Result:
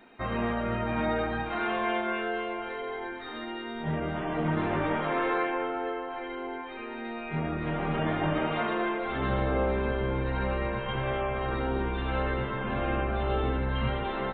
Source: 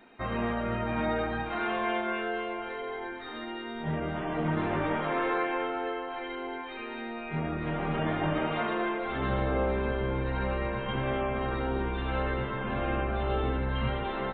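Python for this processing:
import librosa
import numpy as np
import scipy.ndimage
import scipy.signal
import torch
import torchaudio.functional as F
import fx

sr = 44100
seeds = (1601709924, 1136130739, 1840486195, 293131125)

y = fx.lowpass(x, sr, hz=2300.0, slope=6, at=(5.5, 7.05))
y = fx.peak_eq(y, sr, hz=250.0, db=-9.5, octaves=0.52, at=(10.79, 11.49))
y = y * 10.0 ** (1.0 / 20.0)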